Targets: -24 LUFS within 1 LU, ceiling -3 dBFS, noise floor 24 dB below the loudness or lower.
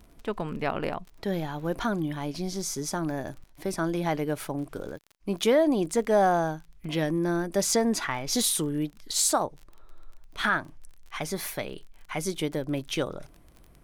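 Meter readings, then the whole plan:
tick rate 29 per s; loudness -28.0 LUFS; peak level -12.5 dBFS; loudness target -24.0 LUFS
-> de-click; trim +4 dB

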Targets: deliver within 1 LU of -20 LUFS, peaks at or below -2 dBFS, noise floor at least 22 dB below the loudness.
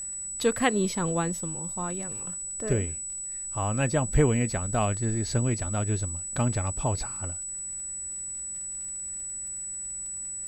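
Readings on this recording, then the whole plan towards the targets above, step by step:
tick rate 31 per s; steady tone 7.9 kHz; tone level -33 dBFS; loudness -28.5 LUFS; peak level -9.5 dBFS; loudness target -20.0 LUFS
-> de-click; band-stop 7.9 kHz, Q 30; trim +8.5 dB; peak limiter -2 dBFS

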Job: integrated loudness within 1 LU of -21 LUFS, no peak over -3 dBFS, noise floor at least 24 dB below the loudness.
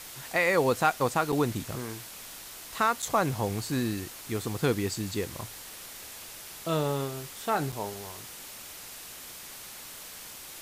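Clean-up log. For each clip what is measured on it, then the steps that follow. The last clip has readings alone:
dropouts 3; longest dropout 5.9 ms; noise floor -45 dBFS; noise floor target -54 dBFS; loudness -30.0 LUFS; peak level -13.0 dBFS; loudness target -21.0 LUFS
-> interpolate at 1.32/3.02/7.72 s, 5.9 ms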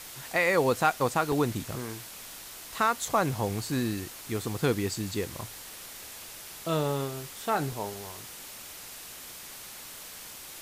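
dropouts 0; noise floor -45 dBFS; noise floor target -54 dBFS
-> noise reduction 9 dB, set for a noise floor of -45 dBFS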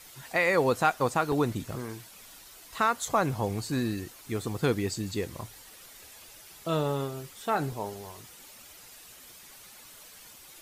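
noise floor -51 dBFS; noise floor target -54 dBFS
-> noise reduction 6 dB, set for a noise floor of -51 dBFS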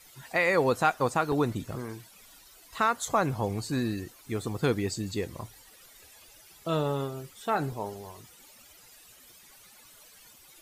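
noise floor -55 dBFS; loudness -29.5 LUFS; peak level -13.0 dBFS; loudness target -21.0 LUFS
-> trim +8.5 dB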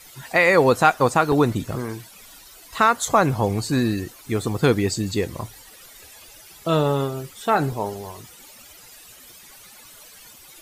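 loudness -21.0 LUFS; peak level -4.5 dBFS; noise floor -47 dBFS

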